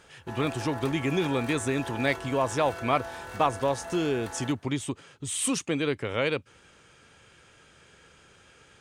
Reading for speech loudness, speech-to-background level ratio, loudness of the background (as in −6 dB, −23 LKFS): −28.5 LKFS, 11.0 dB, −39.5 LKFS